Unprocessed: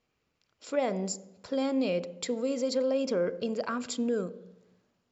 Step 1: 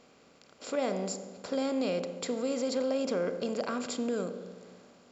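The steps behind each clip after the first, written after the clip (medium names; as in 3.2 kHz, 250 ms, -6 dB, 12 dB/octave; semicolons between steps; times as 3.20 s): spectral levelling over time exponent 0.6; trim -4.5 dB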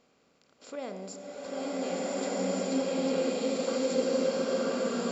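swelling reverb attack 1500 ms, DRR -10 dB; trim -7.5 dB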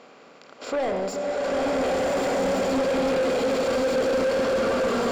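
overdrive pedal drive 30 dB, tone 1.4 kHz, clips at -15.5 dBFS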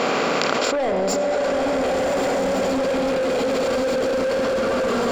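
level flattener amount 100%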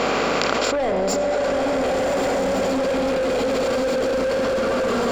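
hum 50 Hz, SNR 23 dB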